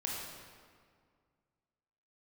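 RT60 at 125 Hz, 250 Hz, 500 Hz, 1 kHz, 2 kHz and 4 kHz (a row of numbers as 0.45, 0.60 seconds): 2.4, 2.3, 2.0, 2.0, 1.6, 1.3 seconds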